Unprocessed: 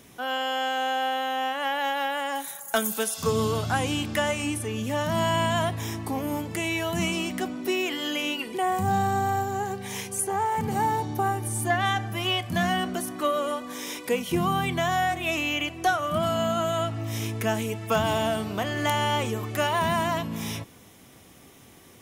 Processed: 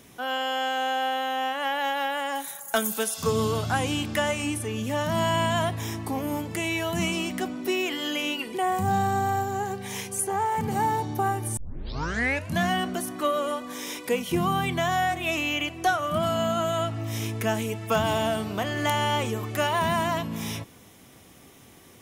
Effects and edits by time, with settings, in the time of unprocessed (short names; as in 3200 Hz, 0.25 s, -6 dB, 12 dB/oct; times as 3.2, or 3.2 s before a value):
11.57 tape start 1.01 s